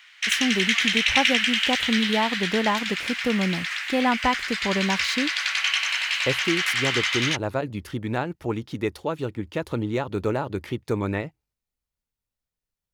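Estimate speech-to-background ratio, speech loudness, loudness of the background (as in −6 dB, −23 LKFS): −4.0 dB, −27.5 LKFS, −23.5 LKFS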